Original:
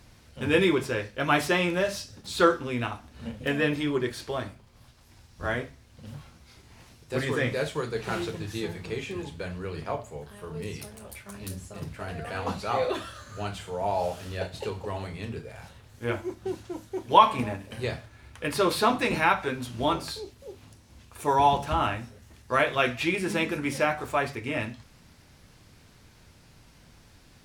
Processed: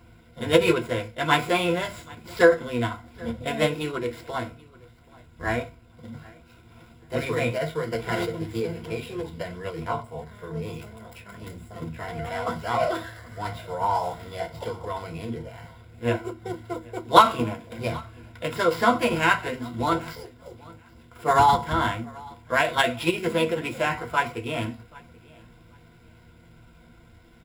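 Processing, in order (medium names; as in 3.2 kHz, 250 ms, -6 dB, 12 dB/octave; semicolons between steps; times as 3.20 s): median filter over 9 samples; rippled EQ curve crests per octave 1.9, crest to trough 15 dB; formant shift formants +3 st; feedback delay 781 ms, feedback 21%, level -24 dB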